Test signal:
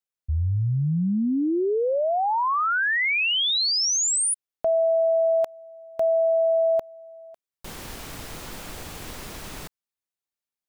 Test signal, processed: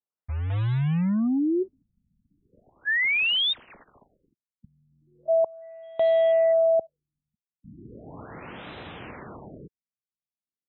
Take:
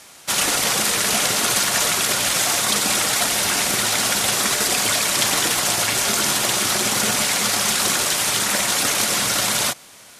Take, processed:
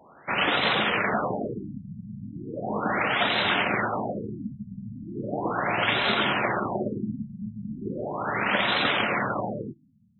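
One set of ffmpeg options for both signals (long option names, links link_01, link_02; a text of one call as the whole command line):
ffmpeg -i in.wav -af "highpass=100,lowpass=5200,acrusher=bits=3:mode=log:mix=0:aa=0.000001,afftfilt=real='re*lt(b*sr/1024,220*pow(4100/220,0.5+0.5*sin(2*PI*0.37*pts/sr)))':imag='im*lt(b*sr/1024,220*pow(4100/220,0.5+0.5*sin(2*PI*0.37*pts/sr)))':win_size=1024:overlap=0.75" out.wav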